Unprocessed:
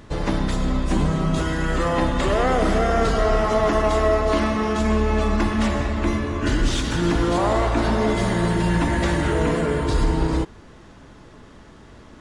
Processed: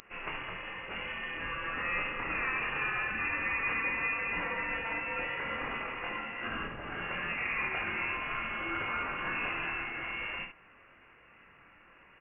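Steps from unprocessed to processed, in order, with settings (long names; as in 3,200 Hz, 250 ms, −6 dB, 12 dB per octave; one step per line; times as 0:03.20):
high-pass filter 230 Hz 12 dB per octave
first difference
brickwall limiter −30 dBFS, peak gain reduction 10 dB
ambience of single reflections 25 ms −4 dB, 72 ms −6.5 dB
voice inversion scrambler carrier 3,100 Hz
level +6 dB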